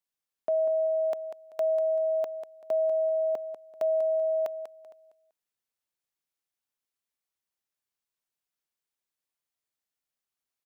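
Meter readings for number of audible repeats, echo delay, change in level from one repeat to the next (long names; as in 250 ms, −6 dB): 2, 193 ms, −11.5 dB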